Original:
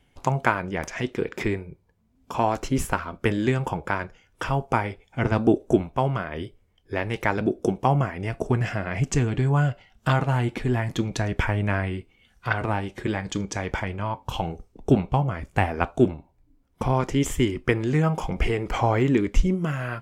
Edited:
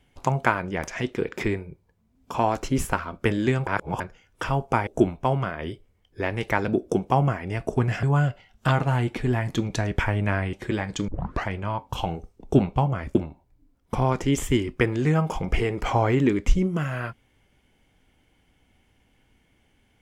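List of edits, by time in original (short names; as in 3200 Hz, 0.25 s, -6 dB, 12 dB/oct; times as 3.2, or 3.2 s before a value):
3.67–4 reverse
4.87–5.6 cut
8.76–9.44 cut
11.94–12.89 cut
13.44 tape start 0.39 s
15.51–16.03 cut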